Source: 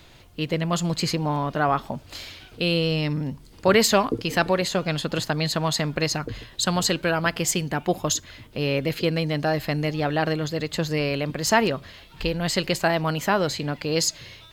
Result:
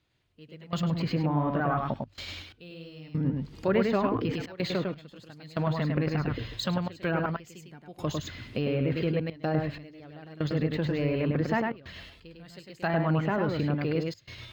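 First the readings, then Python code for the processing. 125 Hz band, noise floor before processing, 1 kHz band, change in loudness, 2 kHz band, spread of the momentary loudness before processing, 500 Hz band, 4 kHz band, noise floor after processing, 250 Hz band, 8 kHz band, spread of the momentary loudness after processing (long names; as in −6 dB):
−2.5 dB, −49 dBFS, −7.5 dB, −5.5 dB, −9.5 dB, 8 LU, −6.5 dB, −13.5 dB, −58 dBFS, −3.0 dB, −23.5 dB, 19 LU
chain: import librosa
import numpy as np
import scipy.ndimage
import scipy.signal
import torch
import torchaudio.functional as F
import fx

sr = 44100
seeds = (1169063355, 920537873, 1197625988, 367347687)

p1 = fx.spec_quant(x, sr, step_db=15)
p2 = fx.step_gate(p1, sr, bpm=62, pattern='...xxxxx.x', floor_db=-24.0, edge_ms=4.5)
p3 = fx.peak_eq(p2, sr, hz=820.0, db=-5.0, octaves=1.5)
p4 = fx.hum_notches(p3, sr, base_hz=50, count=2)
p5 = fx.over_compress(p4, sr, threshold_db=-29.0, ratio=-0.5)
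p6 = p4 + F.gain(torch.from_numpy(p5), -1.5).numpy()
p7 = scipy.signal.sosfilt(scipy.signal.butter(2, 42.0, 'highpass', fs=sr, output='sos'), p6)
p8 = fx.high_shelf(p7, sr, hz=3900.0, db=-5.5)
p9 = p8 + fx.echo_single(p8, sr, ms=102, db=-3.5, dry=0)
p10 = fx.env_lowpass_down(p9, sr, base_hz=1800.0, full_db=-18.0)
p11 = np.interp(np.arange(len(p10)), np.arange(len(p10))[::2], p10[::2])
y = F.gain(torch.from_numpy(p11), -5.0).numpy()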